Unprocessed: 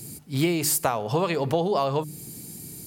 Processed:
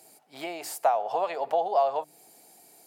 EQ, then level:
high-pass with resonance 710 Hz, resonance Q 4
parametric band 1,100 Hz −3.5 dB 0.49 octaves
high-shelf EQ 3,400 Hz −10 dB
−5.5 dB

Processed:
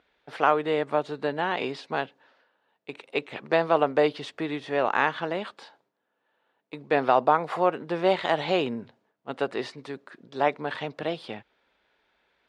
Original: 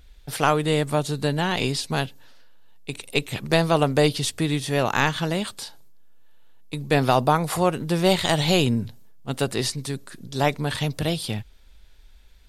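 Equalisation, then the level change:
band-pass filter 380–2,000 Hz
0.0 dB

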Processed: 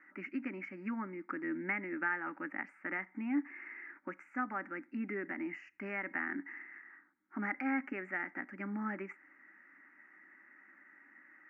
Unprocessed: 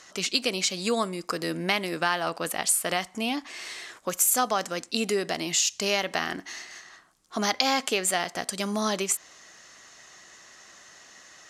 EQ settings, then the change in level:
loudspeaker in its box 170–2,200 Hz, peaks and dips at 200 Hz +3 dB, 290 Hz +10 dB, 590 Hz +7 dB, 970 Hz +10 dB, 2,100 Hz +6 dB
phaser with its sweep stopped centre 700 Hz, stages 8
phaser with its sweep stopped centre 1,600 Hz, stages 4
−6.5 dB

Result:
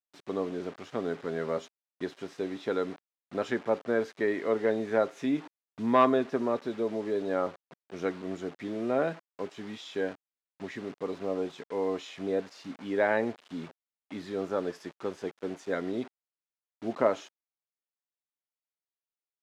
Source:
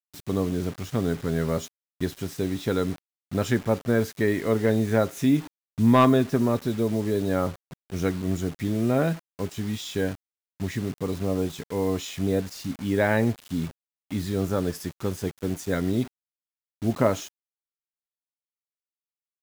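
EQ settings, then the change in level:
high-pass filter 390 Hz 12 dB per octave
head-to-tape spacing loss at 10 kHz 22 dB
0.0 dB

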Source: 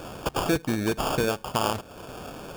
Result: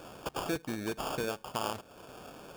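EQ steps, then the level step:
low-shelf EQ 140 Hz −7 dB
−8.5 dB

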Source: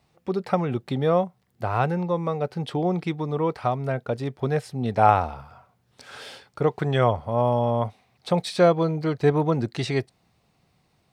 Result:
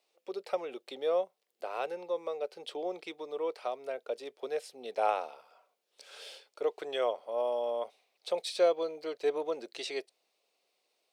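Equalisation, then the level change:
high-pass filter 450 Hz 24 dB per octave
flat-topped bell 1,200 Hz −8.5 dB
−5.0 dB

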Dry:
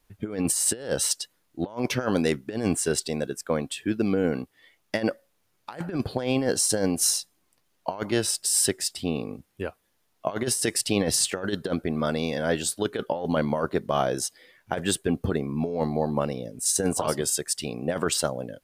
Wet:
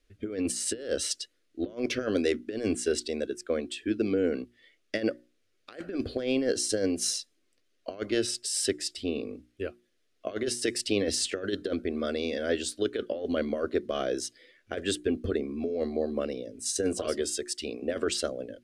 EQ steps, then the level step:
high-frequency loss of the air 71 metres
mains-hum notches 60/120/180/240/300/360 Hz
phaser with its sweep stopped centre 370 Hz, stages 4
0.0 dB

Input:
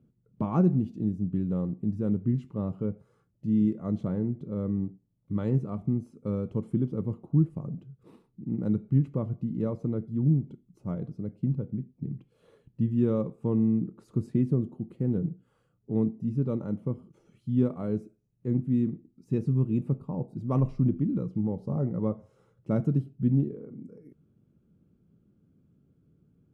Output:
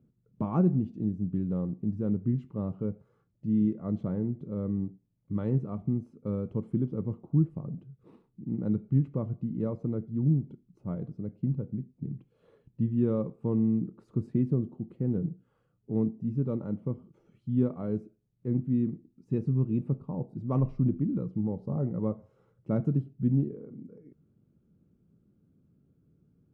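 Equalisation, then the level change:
low-pass filter 2,200 Hz 6 dB per octave
−1.5 dB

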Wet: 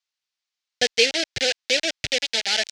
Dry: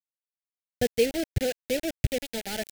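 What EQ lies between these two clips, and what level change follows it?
low-pass filter 5,400 Hz 24 dB per octave
spectral tilt +4 dB per octave
low-shelf EQ 410 Hz −9.5 dB
+9.0 dB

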